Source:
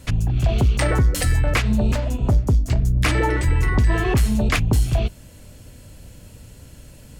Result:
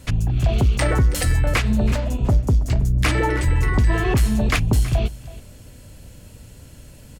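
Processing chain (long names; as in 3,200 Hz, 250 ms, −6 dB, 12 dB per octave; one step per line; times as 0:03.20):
single-tap delay 325 ms −17.5 dB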